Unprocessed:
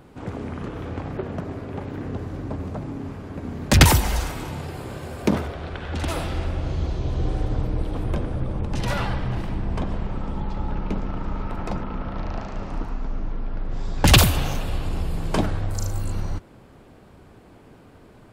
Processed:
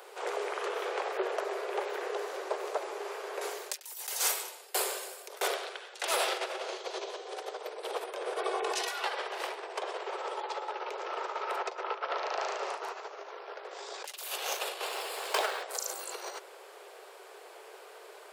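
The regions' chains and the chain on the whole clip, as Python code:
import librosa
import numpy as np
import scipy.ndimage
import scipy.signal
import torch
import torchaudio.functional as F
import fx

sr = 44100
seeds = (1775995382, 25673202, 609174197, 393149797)

y = fx.chain(x, sr, fx.high_shelf(hz=4800.0, db=12.0),
    fx.over_compress(threshold_db=-19.0, ratio=-0.5),
    fx.tremolo_decay(direction='decaying', hz=1.5, depth_db=30), at=(3.41, 6.02))
y = fx.chain(y, sr, fx.highpass(hz=310.0, slope=12),
    fx.comb(ms=2.7, depth=0.84),
    fx.over_compress(threshold_db=-36.0, ratio=-1.0), at=(8.36, 9.04))
y = fx.chain(y, sr, fx.lowpass(hz=7100.0, slope=24),
    fx.over_compress(threshold_db=-31.0, ratio=-0.5), at=(11.62, 12.17))
y = fx.chain(y, sr, fx.highpass(hz=600.0, slope=6),
    fx.peak_eq(hz=6300.0, db=-3.0, octaves=0.35),
    fx.resample_linear(factor=2), at=(14.85, 15.63))
y = fx.high_shelf(y, sr, hz=2900.0, db=7.5)
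y = fx.over_compress(y, sr, threshold_db=-27.0, ratio=-1.0)
y = scipy.signal.sosfilt(scipy.signal.butter(16, 380.0, 'highpass', fs=sr, output='sos'), y)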